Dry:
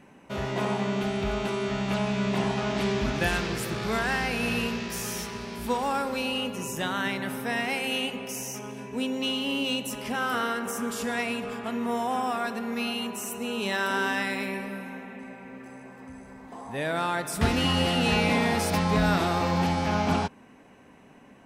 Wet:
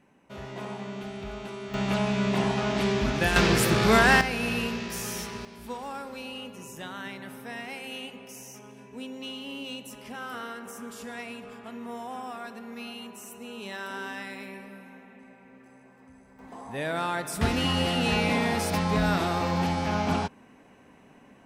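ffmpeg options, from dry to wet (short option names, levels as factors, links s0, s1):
-af "asetnsamples=n=441:p=0,asendcmd='1.74 volume volume 1dB;3.36 volume volume 8.5dB;4.21 volume volume -1dB;5.45 volume volume -9.5dB;16.39 volume volume -1.5dB',volume=0.355"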